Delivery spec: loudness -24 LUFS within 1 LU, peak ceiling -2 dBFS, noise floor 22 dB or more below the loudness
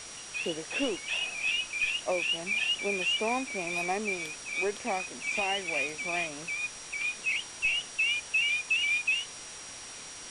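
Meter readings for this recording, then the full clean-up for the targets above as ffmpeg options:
steady tone 5700 Hz; tone level -47 dBFS; noise floor -44 dBFS; noise floor target -52 dBFS; loudness -29.5 LUFS; peak -18.0 dBFS; loudness target -24.0 LUFS
-> -af "bandreject=f=5.7k:w=30"
-af "afftdn=nr=8:nf=-44"
-af "volume=5.5dB"

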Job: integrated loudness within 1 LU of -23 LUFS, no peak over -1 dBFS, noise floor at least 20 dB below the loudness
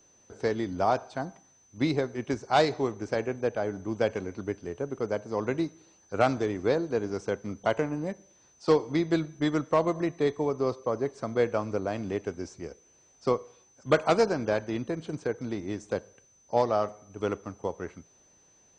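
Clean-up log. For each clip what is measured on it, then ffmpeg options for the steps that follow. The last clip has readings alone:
steady tone 6100 Hz; tone level -60 dBFS; loudness -29.5 LUFS; peak -9.5 dBFS; loudness target -23.0 LUFS
-> -af "bandreject=f=6.1k:w=30"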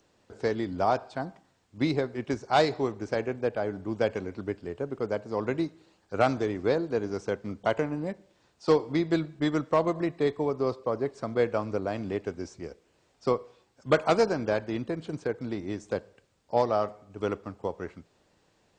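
steady tone none; loudness -29.5 LUFS; peak -9.5 dBFS; loudness target -23.0 LUFS
-> -af "volume=6.5dB"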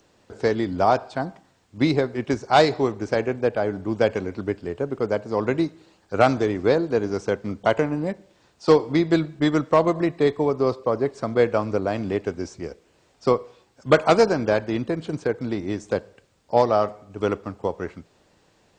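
loudness -23.0 LUFS; peak -3.0 dBFS; noise floor -62 dBFS

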